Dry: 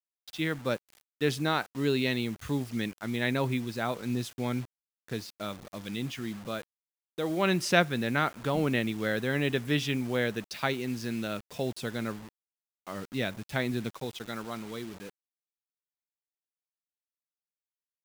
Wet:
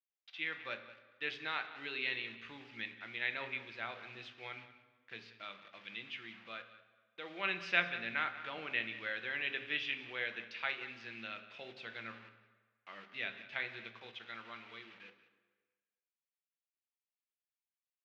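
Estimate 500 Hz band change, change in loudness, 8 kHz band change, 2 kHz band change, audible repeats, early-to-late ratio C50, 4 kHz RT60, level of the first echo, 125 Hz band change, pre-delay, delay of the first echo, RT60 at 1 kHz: −17.0 dB, −8.5 dB, below −25 dB, −3.5 dB, 1, 10.0 dB, 1.0 s, −16.0 dB, −25.5 dB, 3 ms, 184 ms, 1.4 s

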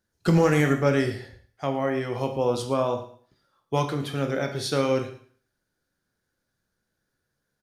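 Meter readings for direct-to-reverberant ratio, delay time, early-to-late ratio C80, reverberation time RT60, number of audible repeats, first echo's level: 5.0 dB, 113 ms, 12.0 dB, 0.50 s, 1, −16.5 dB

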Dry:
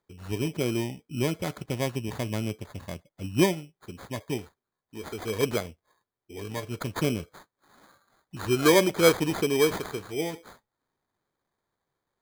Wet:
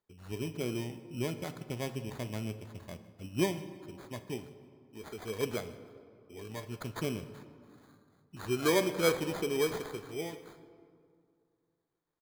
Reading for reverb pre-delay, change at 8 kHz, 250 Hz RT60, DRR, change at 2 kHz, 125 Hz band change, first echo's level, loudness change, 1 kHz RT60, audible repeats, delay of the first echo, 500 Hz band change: 3 ms, −8.0 dB, 2.6 s, 10.0 dB, −7.5 dB, −7.5 dB, −23.0 dB, −8.0 dB, 2.2 s, 1, 155 ms, −7.5 dB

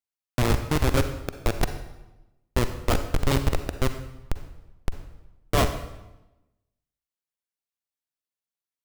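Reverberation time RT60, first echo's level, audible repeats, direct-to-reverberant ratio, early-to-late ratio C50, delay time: 1.0 s, no echo audible, no echo audible, 8.5 dB, 9.0 dB, no echo audible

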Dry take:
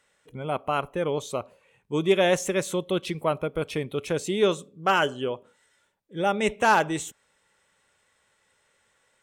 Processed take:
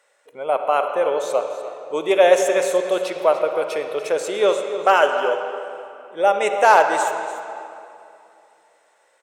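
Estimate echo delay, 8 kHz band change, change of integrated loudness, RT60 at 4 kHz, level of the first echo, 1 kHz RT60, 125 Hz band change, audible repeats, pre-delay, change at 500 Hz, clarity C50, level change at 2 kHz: 293 ms, +4.0 dB, +6.5 dB, 2.0 s, −13.5 dB, 2.6 s, below −15 dB, 1, 39 ms, +8.5 dB, 5.5 dB, +5.5 dB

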